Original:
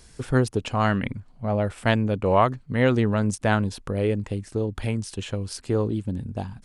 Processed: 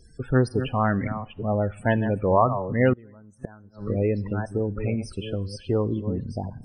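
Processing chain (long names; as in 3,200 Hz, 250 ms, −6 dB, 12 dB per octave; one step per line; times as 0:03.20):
delay that plays each chunk backwards 495 ms, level −10 dB
spectral peaks only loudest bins 32
coupled-rooms reverb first 0.64 s, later 1.6 s, from −16 dB, DRR 19 dB
0:02.93–0:03.85: gate with flip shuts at −18 dBFS, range −26 dB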